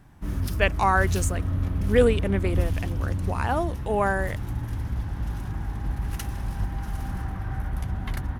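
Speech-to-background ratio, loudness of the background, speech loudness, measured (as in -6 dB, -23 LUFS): 4.0 dB, -30.0 LUFS, -26.0 LUFS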